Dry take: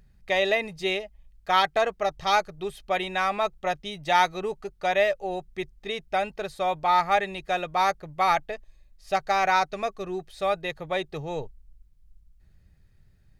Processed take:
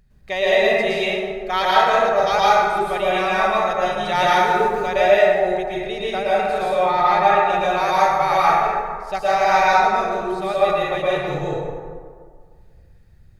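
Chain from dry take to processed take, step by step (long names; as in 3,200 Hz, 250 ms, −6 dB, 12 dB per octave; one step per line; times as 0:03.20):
0:04.34–0:04.76: converter with a step at zero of −40 dBFS
0:06.65–0:07.48: high-shelf EQ 6,600 Hz −10 dB
dense smooth reverb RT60 1.9 s, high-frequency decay 0.45×, pre-delay 100 ms, DRR −8 dB
level −1 dB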